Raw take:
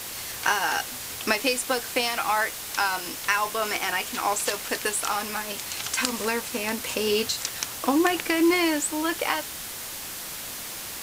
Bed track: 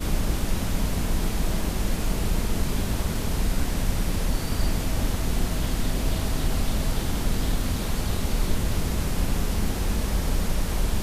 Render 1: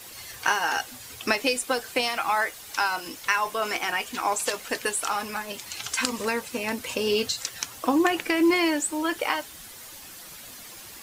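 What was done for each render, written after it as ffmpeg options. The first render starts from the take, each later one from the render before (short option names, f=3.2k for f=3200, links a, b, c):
-af "afftdn=nr=10:nf=-36"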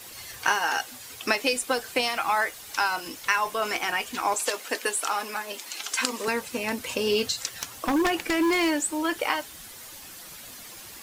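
-filter_complex "[0:a]asettb=1/sr,asplit=3[a][b][c];[a]atrim=end=0.594[d];[b]atrim=start=0.59:end=1.53,asetpts=PTS-STARTPTS,afade=t=in:d=0.004:c=qsin,afade=t=out:st=0.936:d=0.004:c=qsin,lowshelf=f=150:g=-8[e];[c]atrim=start=1.526[f];[d][e]acrossfade=d=0.004:c1=hsin:c2=qsin[g];[g][f]acrossfade=d=0.004:c1=qsin:c2=hsin,asettb=1/sr,asplit=3[h][i][j];[h]atrim=end=4.344[k];[i]atrim=start=4.34:end=6.28,asetpts=PTS-STARTPTS,afade=t=in:d=0.004:c=qsin,afade=t=out:st=1.936:d=0.004:c=qsin,highpass=f=250:w=0.5412,highpass=f=250:w=1.3066[l];[j]atrim=start=6.276[m];[k][l]acrossfade=d=0.004:c1=hsin:c2=qsin[n];[n][m]acrossfade=d=0.004:c1=qsin:c2=hsin,asettb=1/sr,asplit=3[o][p][q];[o]atrim=end=7.504[r];[p]atrim=start=7.5:end=9.09,asetpts=PTS-STARTPTS,afade=t=in:d=0.004:c=qsin,afade=t=out:st=1.586:d=0.004:c=qsin,aeval=exprs='0.133*(abs(mod(val(0)/0.133+3,4)-2)-1)':c=same[s];[q]atrim=start=9.086[t];[r][s]acrossfade=d=0.004:c1=hsin:c2=qsin[u];[u][t]acrossfade=d=0.004:c1=qsin:c2=hsin"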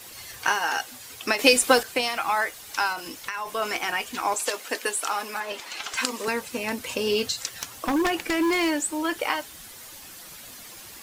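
-filter_complex "[0:a]asettb=1/sr,asplit=3[a][b][c];[a]atrim=end=2.924[d];[b]atrim=start=2.92:end=3.55,asetpts=PTS-STARTPTS,afade=t=in:d=0.004:c=qsin,afade=t=out:st=0.626:d=0.004:c=qsin,acompressor=threshold=-27dB:ratio=6:attack=3.2:release=140:knee=1:detection=peak[e];[c]atrim=start=3.546[f];[d][e]acrossfade=d=0.004:c1=hsin:c2=qsin[g];[g][f]acrossfade=d=0.004:c1=qsin:c2=hsin,asettb=1/sr,asplit=3[h][i][j];[h]atrim=end=5.404[k];[i]atrim=start=5.4:end=5.97,asetpts=PTS-STARTPTS,afade=t=in:d=0.004:c=qsin,afade=t=out:st=0.566:d=0.004:c=qsin,asplit=2[l][m];[m]highpass=f=720:p=1,volume=14dB,asoftclip=type=tanh:threshold=-13.5dB[n];[l][n]amix=inputs=2:normalize=0,lowpass=f=1.7k:p=1,volume=-6dB[o];[j]atrim=start=5.966[p];[k][o]acrossfade=d=0.004:c1=hsin:c2=qsin[q];[q][p]acrossfade=d=0.004:c1=qsin:c2=hsin,asplit=3[r][s][t];[r]atrim=end=1.392[u];[s]atrim=start=1.388:end=1.832,asetpts=PTS-STARTPTS,volume=8dB[v];[t]atrim=start=1.828[w];[u][v]acrossfade=d=0.004:c1=hsin:c2=hsin[x];[x][w]acrossfade=d=0.004:c1=hsin:c2=hsin"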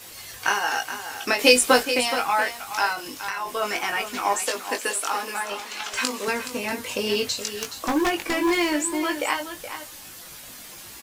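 -filter_complex "[0:a]asplit=2[a][b];[b]adelay=20,volume=-5dB[c];[a][c]amix=inputs=2:normalize=0,asplit=2[d][e];[e]aecho=0:1:422:0.299[f];[d][f]amix=inputs=2:normalize=0"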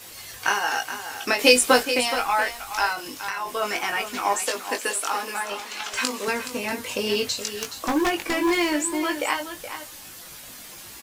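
-filter_complex "[0:a]asplit=3[a][b][c];[a]afade=t=out:st=2.11:d=0.02[d];[b]asubboost=boost=9.5:cutoff=54,afade=t=in:st=2.11:d=0.02,afade=t=out:st=2.92:d=0.02[e];[c]afade=t=in:st=2.92:d=0.02[f];[d][e][f]amix=inputs=3:normalize=0"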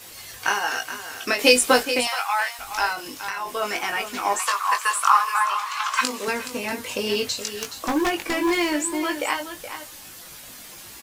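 -filter_complex "[0:a]asettb=1/sr,asplit=3[a][b][c];[a]atrim=end=0.684[d];[b]atrim=start=0.68:end=1.39,asetpts=PTS-STARTPTS,afade=t=in:d=0.004:c=qsin,afade=t=out:st=0.706:d=0.004:c=qsin,bandreject=f=830:w=5.9[e];[c]atrim=start=1.386[f];[d][e]acrossfade=d=0.004:c1=hsin:c2=qsin[g];[g][f]acrossfade=d=0.004:c1=qsin:c2=hsin,asettb=1/sr,asplit=3[h][i][j];[h]atrim=end=2.074[k];[i]atrim=start=2.07:end=2.59,asetpts=PTS-STARTPTS,afade=t=in:d=0.004:c=qsin,afade=t=out:st=0.516:d=0.004:c=qsin,highpass=f=750:w=0.5412,highpass=f=750:w=1.3066[l];[j]atrim=start=2.586[m];[k][l]acrossfade=d=0.004:c1=hsin:c2=qsin[n];[n][m]acrossfade=d=0.004:c1=qsin:c2=hsin,asettb=1/sr,asplit=3[o][p][q];[o]atrim=end=4.394[r];[p]atrim=start=4.39:end=6.01,asetpts=PTS-STARTPTS,afade=t=in:d=0.004:c=qsin,afade=t=out:st=1.616:d=0.004:c=qsin,highpass=f=1.1k:t=q:w=9.8[s];[q]atrim=start=6.006[t];[r][s]acrossfade=d=0.004:c1=hsin:c2=qsin[u];[u][t]acrossfade=d=0.004:c1=qsin:c2=hsin"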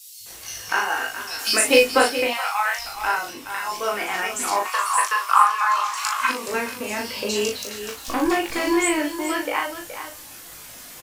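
-filter_complex "[0:a]asplit=2[a][b];[b]adelay=38,volume=-4dB[c];[a][c]amix=inputs=2:normalize=0,acrossover=split=170|3700[d][e][f];[d]adelay=200[g];[e]adelay=260[h];[g][h][f]amix=inputs=3:normalize=0"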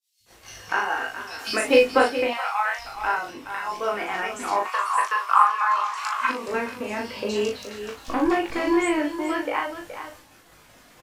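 -af "lowpass=f=1.8k:p=1,agate=range=-33dB:threshold=-43dB:ratio=3:detection=peak"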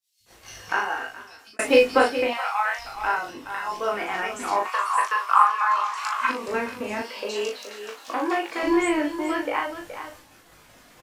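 -filter_complex "[0:a]asettb=1/sr,asplit=3[a][b][c];[a]atrim=end=3.264[d];[b]atrim=start=3.26:end=3.92,asetpts=PTS-STARTPTS,afade=t=in:d=0.004:c=qsin,afade=t=out:st=0.656:d=0.004:c=qsin,bandreject=f=2.3k:w=12[e];[c]atrim=start=3.916[f];[d][e]acrossfade=d=0.004:c1=hsin:c2=qsin[g];[g][f]acrossfade=d=0.004:c1=qsin:c2=hsin,asettb=1/sr,asplit=3[h][i][j];[h]atrim=end=7.024[k];[i]atrim=start=7.02:end=8.63,asetpts=PTS-STARTPTS,afade=t=in:d=0.004:c=qsin,afade=t=out:st=1.606:d=0.004:c=qsin,highpass=430[l];[j]atrim=start=8.626[m];[k][l]acrossfade=d=0.004:c1=hsin:c2=qsin[n];[n][m]acrossfade=d=0.004:c1=qsin:c2=hsin,asplit=2[o][p];[o]atrim=end=1.59,asetpts=PTS-STARTPTS,afade=t=out:st=0.74:d=0.85[q];[p]atrim=start=1.59,asetpts=PTS-STARTPTS,afade=t=in:d=0.004:c=hsin[r];[q][r]concat=n=2:v=0:a=1"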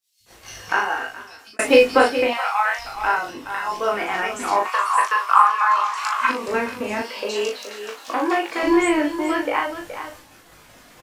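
-af "volume=4dB,alimiter=limit=-2dB:level=0:latency=1"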